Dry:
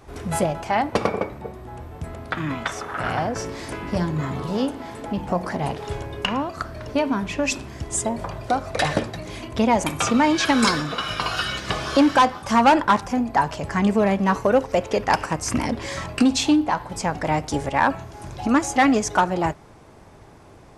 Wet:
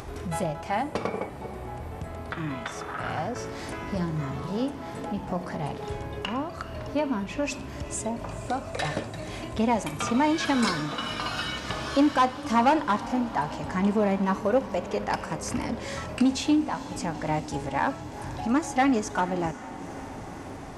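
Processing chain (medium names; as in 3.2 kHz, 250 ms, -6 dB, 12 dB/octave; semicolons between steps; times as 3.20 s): harmonic-percussive split percussive -5 dB; upward compressor, threshold -25 dBFS; on a send: echo that smears into a reverb 466 ms, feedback 75%, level -16 dB; on the sum: trim -4.5 dB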